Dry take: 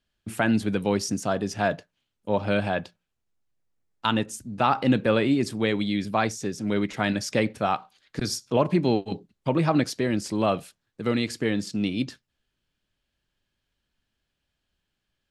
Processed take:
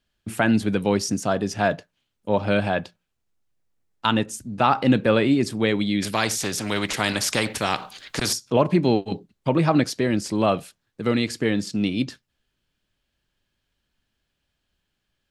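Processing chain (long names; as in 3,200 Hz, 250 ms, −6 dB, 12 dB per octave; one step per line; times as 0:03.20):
0:06.02–0:08.33: every bin compressed towards the loudest bin 2 to 1
level +3 dB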